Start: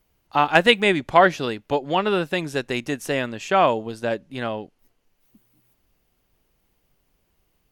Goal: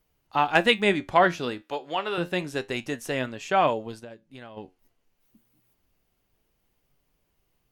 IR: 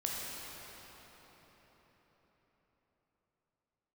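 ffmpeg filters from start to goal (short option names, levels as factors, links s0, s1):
-filter_complex "[0:a]flanger=delay=6.4:depth=6.9:regen=71:speed=0.28:shape=triangular,asettb=1/sr,asplit=3[s0][s1][s2];[s0]atrim=end=1.624[s3];[s1]atrim=start=1.62:end=2.18,asetpts=PTS-STARTPTS,afade=t=in:d=0.004:c=qsin,afade=t=out:st=0.556:d=0.004:c=qsin,highpass=f=670:p=1[s4];[s2]atrim=start=2.176[s5];[s3][s4]acrossfade=d=0.004:c1=hsin:c2=qsin[s6];[s6][s5]acrossfade=d=0.004:c1=qsin:c2=hsin,asplit=3[s7][s8][s9];[s7]afade=t=out:st=3.99:d=0.02[s10];[s8]acompressor=threshold=0.00794:ratio=5,afade=t=in:st=3.99:d=0.02,afade=t=out:st=4.56:d=0.02[s11];[s9]afade=t=in:st=4.56:d=0.02[s12];[s10][s11][s12]amix=inputs=3:normalize=0"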